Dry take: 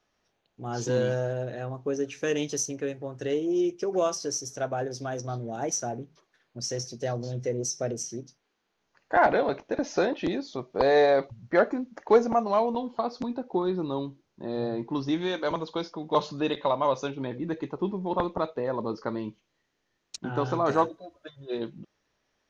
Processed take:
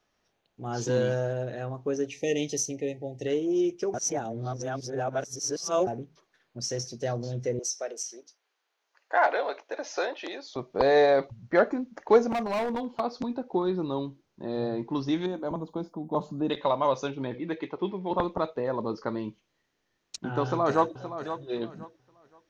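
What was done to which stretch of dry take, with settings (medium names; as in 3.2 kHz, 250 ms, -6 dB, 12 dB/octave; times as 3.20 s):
2.07–3.27 s: brick-wall FIR band-stop 880–1800 Hz
3.94–5.87 s: reverse
7.59–10.56 s: Bessel high-pass 610 Hz, order 4
12.29–13.00 s: hard clipper -25.5 dBFS
15.26–16.50 s: FFT filter 130 Hz 0 dB, 230 Hz +5 dB, 480 Hz -6 dB, 740 Hz -2 dB, 2.1 kHz -18 dB, 5.8 kHz -18 dB, 8.7 kHz +8 dB
17.34–18.11 s: cabinet simulation 100–5500 Hz, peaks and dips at 140 Hz -8 dB, 230 Hz -7 dB, 2.2 kHz +9 dB, 3.3 kHz +6 dB
20.43–21.00 s: echo throw 520 ms, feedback 25%, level -11 dB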